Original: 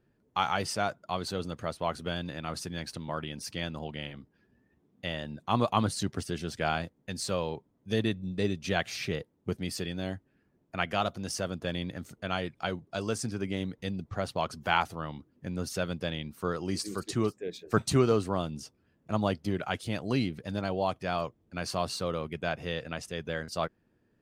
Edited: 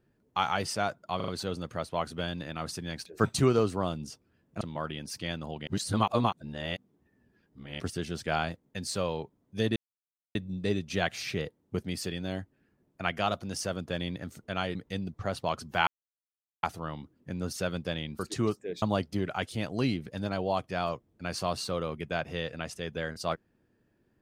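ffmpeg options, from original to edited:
-filter_complex "[0:a]asplit=13[a][b][c][d][e][f][g][h][i][j][k][l][m];[a]atrim=end=1.202[n];[b]atrim=start=1.158:end=1.202[o];[c]atrim=start=1.158:end=1.202[p];[d]atrim=start=1.158:end=2.942[q];[e]atrim=start=17.588:end=19.142[r];[f]atrim=start=2.938:end=4.002[s];[g]atrim=start=3.998:end=6.132,asetpts=PTS-STARTPTS,areverse[t];[h]atrim=start=6.128:end=8.09,asetpts=PTS-STARTPTS,afade=t=out:st=1.958:d=0.004:c=hsin,apad=pad_dur=0.59[u];[i]atrim=start=8.09:end=12.492,asetpts=PTS-STARTPTS,afade=t=in:d=0.004:c=hsin[v];[j]atrim=start=13.668:end=14.79,asetpts=PTS-STARTPTS,afade=t=out:st=1.118:d=0.004:c=hsin,apad=pad_dur=0.76[w];[k]atrim=start=14.79:end=16.352,asetpts=PTS-STARTPTS,afade=t=in:d=0.004:c=hsin[x];[l]atrim=start=16.958:end=17.592[y];[m]atrim=start=19.138[z];[n][o]acrossfade=d=0.004:c1=hsin:c2=hsin[aa];[aa][p]acrossfade=d=0.004:c1=hsin:c2=hsin[ab];[ab][q]acrossfade=d=0.004:c1=hsin:c2=hsin[ac];[ac][r]acrossfade=d=0.004:c1=hsin:c2=hsin[ad];[ad][s]acrossfade=d=0.004:c1=hsin:c2=hsin[ae];[ae][t]acrossfade=d=0.004:c1=hsin:c2=hsin[af];[u][v]concat=n=2:v=0:a=1[ag];[af][ag]acrossfade=d=0.004:c1=hsin:c2=hsin[ah];[w][x]concat=n=2:v=0:a=1[ai];[ah][ai]acrossfade=d=0.004:c1=hsin:c2=hsin[aj];[aj][y]acrossfade=d=0.004:c1=hsin:c2=hsin[ak];[ak][z]acrossfade=d=0.004:c1=hsin:c2=hsin"

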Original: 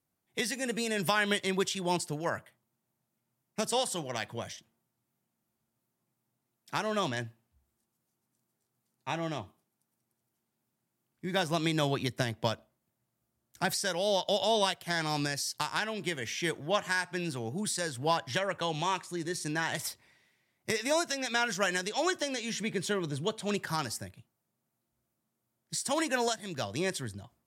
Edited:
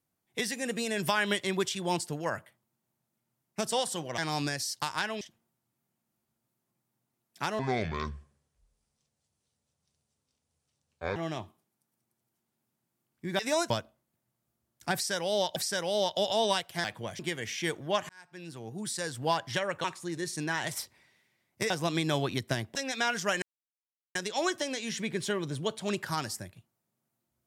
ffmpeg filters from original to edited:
-filter_complex "[0:a]asplit=15[a][b][c][d][e][f][g][h][i][j][k][l][m][n][o];[a]atrim=end=4.182[p];[b]atrim=start=14.958:end=15.992[q];[c]atrim=start=4.528:end=6.914[r];[d]atrim=start=6.91:end=9.16,asetpts=PTS-STARTPTS,asetrate=27783,aresample=44100[s];[e]atrim=start=9.156:end=11.392[t];[f]atrim=start=20.778:end=21.092[u];[g]atrim=start=12.438:end=14.302[v];[h]atrim=start=13.678:end=14.962[w];[i]atrim=start=4.178:end=4.532[x];[j]atrim=start=15.988:end=16.89,asetpts=PTS-STARTPTS,afade=t=out:st=0.898:d=0.004:c=hsin[y];[k]atrim=start=16.89:end=18.642,asetpts=PTS-STARTPTS,afade=t=in:d=1.07[z];[l]atrim=start=18.918:end=20.782[aa];[m]atrim=start=11.388:end=12.442[ab];[n]atrim=start=21.088:end=21.76,asetpts=PTS-STARTPTS,afade=t=out:st=0.668:d=0.004:c=hsin,apad=pad_dur=0.73[ac];[o]atrim=start=21.76,asetpts=PTS-STARTPTS,afade=t=in:d=0.004:c=hsin[ad];[p][q]acrossfade=d=0.004:c1=hsin:c2=hsin[ae];[ae][r]acrossfade=d=0.004:c1=hsin:c2=hsin[af];[af][s]acrossfade=d=0.004:c1=hsin:c2=hsin[ag];[ag][t]acrossfade=d=0.004:c1=hsin:c2=hsin[ah];[ah][u]acrossfade=d=0.004:c1=hsin:c2=hsin[ai];[ai][v]acrossfade=d=0.004:c1=hsin:c2=hsin[aj];[aj][w]acrossfade=d=0.004:c1=hsin:c2=hsin[ak];[ak][x]acrossfade=d=0.004:c1=hsin:c2=hsin[al];[y][z]concat=n=2:v=0:a=1[am];[al][am]acrossfade=d=0.004:c1=hsin:c2=hsin[an];[an][aa]acrossfade=d=0.004:c1=hsin:c2=hsin[ao];[ao][ab]acrossfade=d=0.004:c1=hsin:c2=hsin[ap];[ac][ad]concat=n=2:v=0:a=1[aq];[ap][aq]acrossfade=d=0.004:c1=hsin:c2=hsin"

